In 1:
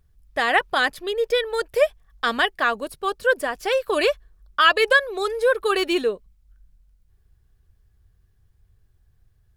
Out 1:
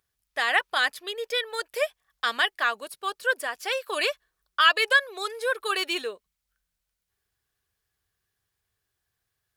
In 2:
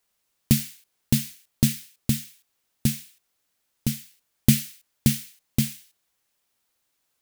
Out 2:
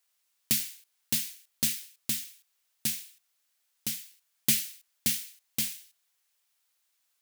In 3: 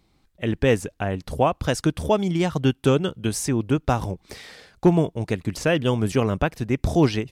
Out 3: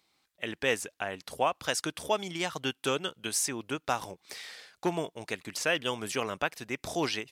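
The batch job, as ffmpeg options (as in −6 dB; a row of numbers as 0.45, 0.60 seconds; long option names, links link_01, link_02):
-af "highpass=frequency=1500:poles=1"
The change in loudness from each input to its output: −4.0, −4.5, −9.0 LU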